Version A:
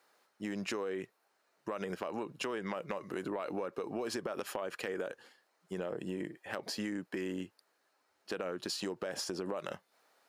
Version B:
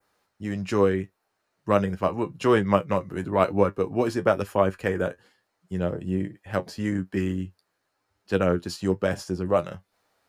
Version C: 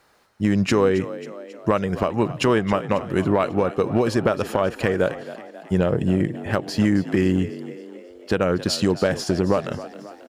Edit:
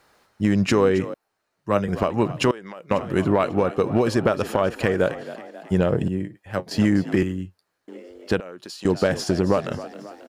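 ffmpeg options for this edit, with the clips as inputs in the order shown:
-filter_complex "[1:a]asplit=3[s0][s1][s2];[0:a]asplit=2[s3][s4];[2:a]asplit=6[s5][s6][s7][s8][s9][s10];[s5]atrim=end=1.142[s11];[s0]atrim=start=1.138:end=1.882[s12];[s6]atrim=start=1.878:end=2.512[s13];[s3]atrim=start=2.508:end=2.912[s14];[s7]atrim=start=2.908:end=6.082[s15];[s1]atrim=start=6.078:end=6.712[s16];[s8]atrim=start=6.708:end=7.232[s17];[s2]atrim=start=7.228:end=7.882[s18];[s9]atrim=start=7.878:end=8.402[s19];[s4]atrim=start=8.398:end=8.852[s20];[s10]atrim=start=8.848[s21];[s11][s12]acrossfade=d=0.004:c1=hsin:c2=hsin[s22];[s22][s13]acrossfade=d=0.004:c1=hsin:c2=hsin[s23];[s23][s14]acrossfade=d=0.004:c1=hsin:c2=hsin[s24];[s24][s15]acrossfade=d=0.004:c1=hsin:c2=hsin[s25];[s25][s16]acrossfade=d=0.004:c1=hsin:c2=hsin[s26];[s26][s17]acrossfade=d=0.004:c1=hsin:c2=hsin[s27];[s27][s18]acrossfade=d=0.004:c1=hsin:c2=hsin[s28];[s28][s19]acrossfade=d=0.004:c1=hsin:c2=hsin[s29];[s29][s20]acrossfade=d=0.004:c1=hsin:c2=hsin[s30];[s30][s21]acrossfade=d=0.004:c1=hsin:c2=hsin"

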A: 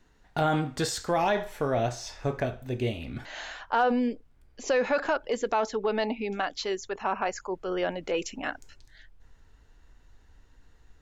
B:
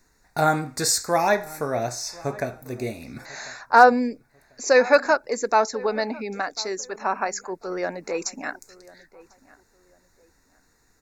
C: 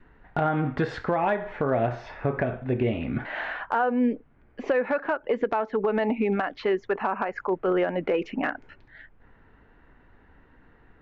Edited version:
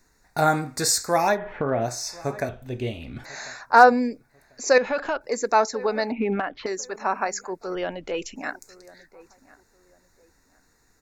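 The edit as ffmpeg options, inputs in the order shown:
-filter_complex "[2:a]asplit=2[s0][s1];[0:a]asplit=3[s2][s3][s4];[1:a]asplit=6[s5][s6][s7][s8][s9][s10];[s5]atrim=end=1.39[s11];[s0]atrim=start=1.29:end=1.9[s12];[s6]atrim=start=1.8:end=2.492[s13];[s2]atrim=start=2.488:end=3.242[s14];[s7]atrim=start=3.238:end=4.782[s15];[s3]atrim=start=4.778:end=5.212[s16];[s8]atrim=start=5.208:end=6.122[s17];[s1]atrim=start=6.118:end=6.662[s18];[s9]atrim=start=6.658:end=7.752[s19];[s4]atrim=start=7.748:end=8.362[s20];[s10]atrim=start=8.358[s21];[s11][s12]acrossfade=d=0.1:c1=tri:c2=tri[s22];[s22][s13]acrossfade=d=0.1:c1=tri:c2=tri[s23];[s23][s14]acrossfade=d=0.004:c1=hsin:c2=hsin[s24];[s24][s15]acrossfade=d=0.004:c1=hsin:c2=hsin[s25];[s25][s16]acrossfade=d=0.004:c1=hsin:c2=hsin[s26];[s26][s17]acrossfade=d=0.004:c1=hsin:c2=hsin[s27];[s27][s18]acrossfade=d=0.004:c1=hsin:c2=hsin[s28];[s28][s19]acrossfade=d=0.004:c1=hsin:c2=hsin[s29];[s29][s20]acrossfade=d=0.004:c1=hsin:c2=hsin[s30];[s30][s21]acrossfade=d=0.004:c1=hsin:c2=hsin"

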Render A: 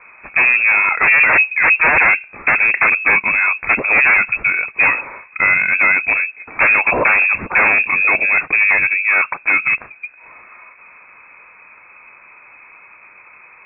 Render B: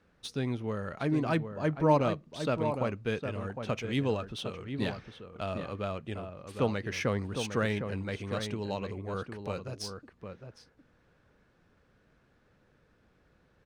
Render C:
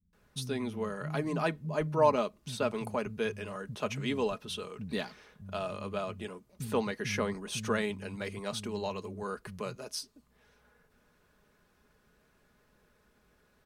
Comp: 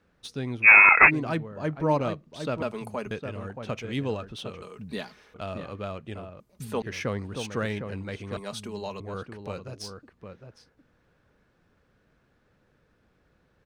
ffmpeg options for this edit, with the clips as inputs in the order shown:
-filter_complex "[2:a]asplit=4[s0][s1][s2][s3];[1:a]asplit=6[s4][s5][s6][s7][s8][s9];[s4]atrim=end=0.68[s10];[0:a]atrim=start=0.62:end=1.11[s11];[s5]atrim=start=1.05:end=2.622[s12];[s0]atrim=start=2.618:end=3.112[s13];[s6]atrim=start=3.108:end=4.622[s14];[s1]atrim=start=4.618:end=5.342[s15];[s7]atrim=start=5.338:end=6.402[s16];[s2]atrim=start=6.398:end=6.822[s17];[s8]atrim=start=6.818:end=8.372[s18];[s3]atrim=start=8.368:end=9.002[s19];[s9]atrim=start=8.998[s20];[s10][s11]acrossfade=d=0.06:c1=tri:c2=tri[s21];[s21][s12]acrossfade=d=0.06:c1=tri:c2=tri[s22];[s22][s13]acrossfade=d=0.004:c1=hsin:c2=hsin[s23];[s23][s14]acrossfade=d=0.004:c1=hsin:c2=hsin[s24];[s24][s15]acrossfade=d=0.004:c1=hsin:c2=hsin[s25];[s25][s16]acrossfade=d=0.004:c1=hsin:c2=hsin[s26];[s26][s17]acrossfade=d=0.004:c1=hsin:c2=hsin[s27];[s27][s18]acrossfade=d=0.004:c1=hsin:c2=hsin[s28];[s28][s19]acrossfade=d=0.004:c1=hsin:c2=hsin[s29];[s29][s20]acrossfade=d=0.004:c1=hsin:c2=hsin"

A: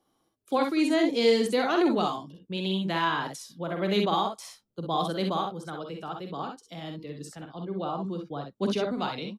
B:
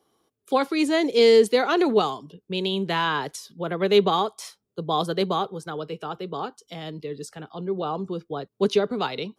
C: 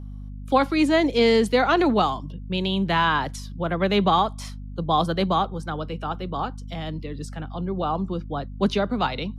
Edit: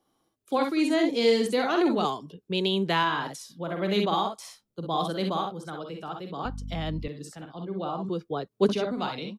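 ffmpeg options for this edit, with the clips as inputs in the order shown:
-filter_complex "[1:a]asplit=2[s0][s1];[0:a]asplit=4[s2][s3][s4][s5];[s2]atrim=end=2.052[s6];[s0]atrim=start=2.048:end=3.032[s7];[s3]atrim=start=3.028:end=6.452[s8];[2:a]atrim=start=6.448:end=7.082[s9];[s4]atrim=start=7.078:end=8.092[s10];[s1]atrim=start=8.088:end=8.692[s11];[s5]atrim=start=8.688[s12];[s6][s7]acrossfade=d=0.004:c1=hsin:c2=hsin[s13];[s13][s8]acrossfade=d=0.004:c1=hsin:c2=hsin[s14];[s14][s9]acrossfade=d=0.004:c1=hsin:c2=hsin[s15];[s15][s10]acrossfade=d=0.004:c1=hsin:c2=hsin[s16];[s16][s11]acrossfade=d=0.004:c1=hsin:c2=hsin[s17];[s17][s12]acrossfade=d=0.004:c1=hsin:c2=hsin"

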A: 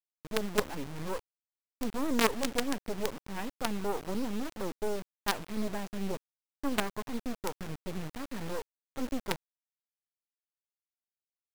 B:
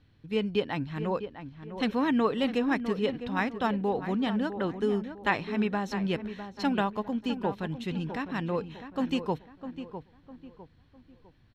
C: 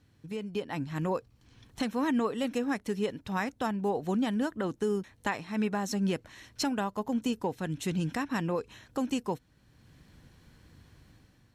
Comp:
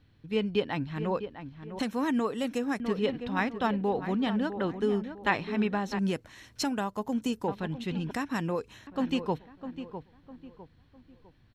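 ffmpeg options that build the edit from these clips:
-filter_complex "[2:a]asplit=3[s0][s1][s2];[1:a]asplit=4[s3][s4][s5][s6];[s3]atrim=end=1.792[s7];[s0]atrim=start=1.788:end=2.802[s8];[s4]atrim=start=2.798:end=5.992[s9];[s1]atrim=start=5.988:end=7.482[s10];[s5]atrim=start=7.478:end=8.112[s11];[s2]atrim=start=8.108:end=8.872[s12];[s6]atrim=start=8.868[s13];[s7][s8]acrossfade=d=0.004:c1=hsin:c2=hsin[s14];[s14][s9]acrossfade=d=0.004:c1=hsin:c2=hsin[s15];[s15][s10]acrossfade=d=0.004:c1=hsin:c2=hsin[s16];[s16][s11]acrossfade=d=0.004:c1=hsin:c2=hsin[s17];[s17][s12]acrossfade=d=0.004:c1=hsin:c2=hsin[s18];[s18][s13]acrossfade=d=0.004:c1=hsin:c2=hsin"

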